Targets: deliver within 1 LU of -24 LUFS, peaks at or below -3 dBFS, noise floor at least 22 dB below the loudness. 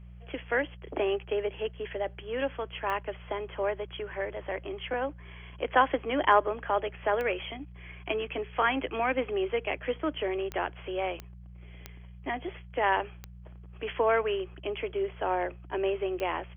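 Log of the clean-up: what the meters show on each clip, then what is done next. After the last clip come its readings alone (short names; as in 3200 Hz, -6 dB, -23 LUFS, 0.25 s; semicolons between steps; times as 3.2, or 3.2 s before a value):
clicks 7; hum 60 Hz; harmonics up to 180 Hz; hum level -45 dBFS; loudness -31.0 LUFS; peak -8.5 dBFS; loudness target -24.0 LUFS
-> de-click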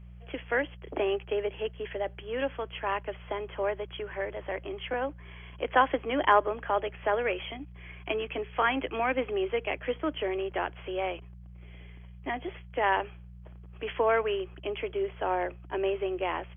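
clicks 0; hum 60 Hz; harmonics up to 180 Hz; hum level -45 dBFS
-> de-hum 60 Hz, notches 3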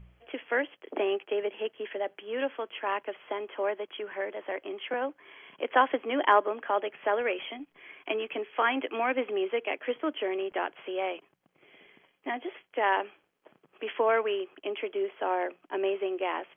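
hum none; loudness -31.0 LUFS; peak -8.5 dBFS; loudness target -24.0 LUFS
-> gain +7 dB; limiter -3 dBFS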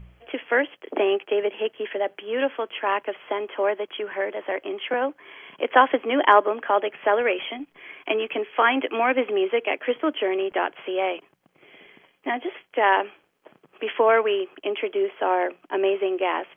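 loudness -24.0 LUFS; peak -3.0 dBFS; noise floor -66 dBFS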